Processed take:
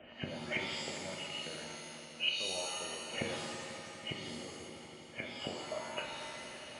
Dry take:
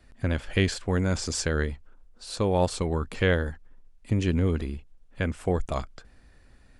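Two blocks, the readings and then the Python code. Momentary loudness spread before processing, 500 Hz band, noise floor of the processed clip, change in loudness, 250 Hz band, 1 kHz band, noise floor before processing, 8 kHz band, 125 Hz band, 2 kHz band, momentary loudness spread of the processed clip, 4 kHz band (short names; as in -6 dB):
12 LU, -14.0 dB, -52 dBFS, -12.0 dB, -17.0 dB, -10.0 dB, -56 dBFS, -6.5 dB, -23.5 dB, -7.0 dB, 11 LU, 0.0 dB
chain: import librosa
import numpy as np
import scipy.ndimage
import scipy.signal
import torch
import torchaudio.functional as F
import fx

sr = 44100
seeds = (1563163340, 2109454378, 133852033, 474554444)

y = fx.freq_compress(x, sr, knee_hz=2100.0, ratio=4.0)
y = fx.harmonic_tremolo(y, sr, hz=2.8, depth_pct=50, crossover_hz=1000.0)
y = fx.rider(y, sr, range_db=10, speed_s=0.5)
y = fx.small_body(y, sr, hz=(610.0, 2900.0), ring_ms=35, db=13)
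y = fx.gate_flip(y, sr, shuts_db=-27.0, range_db=-26)
y = scipy.signal.sosfilt(scipy.signal.butter(2, 200.0, 'highpass', fs=sr, output='sos'), y)
y = fx.echo_swell(y, sr, ms=82, loudest=5, wet_db=-17)
y = fx.rev_shimmer(y, sr, seeds[0], rt60_s=1.2, semitones=7, shimmer_db=-2, drr_db=1.5)
y = F.gain(torch.from_numpy(y), 5.5).numpy()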